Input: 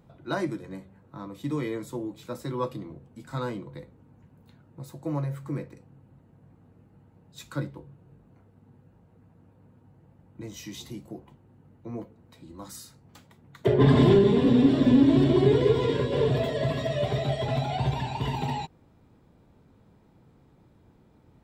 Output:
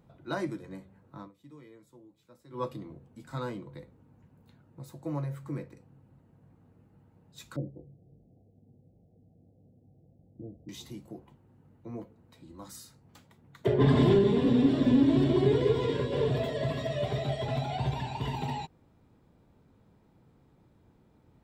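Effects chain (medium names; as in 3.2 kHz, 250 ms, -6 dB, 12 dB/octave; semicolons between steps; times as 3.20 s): 1.20–2.62 s: dip -17.5 dB, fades 0.12 s; 7.56–10.69 s: steep low-pass 770 Hz 96 dB/octave; trim -4 dB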